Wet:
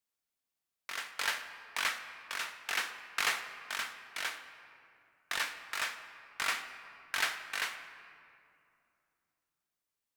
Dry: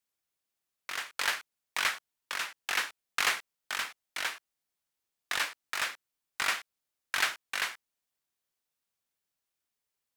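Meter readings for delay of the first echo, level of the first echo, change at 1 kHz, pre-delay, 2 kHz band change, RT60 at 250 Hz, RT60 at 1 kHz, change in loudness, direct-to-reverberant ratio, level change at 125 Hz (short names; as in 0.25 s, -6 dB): none, none, -2.5 dB, 4 ms, -2.5 dB, 3.5 s, 2.4 s, -3.0 dB, 7.0 dB, n/a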